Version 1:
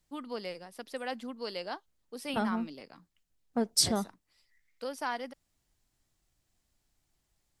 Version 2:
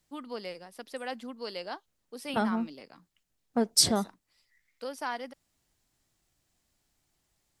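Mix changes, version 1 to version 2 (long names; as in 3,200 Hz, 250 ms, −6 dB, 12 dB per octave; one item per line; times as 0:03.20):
second voice +3.5 dB
master: add low-shelf EQ 74 Hz −8.5 dB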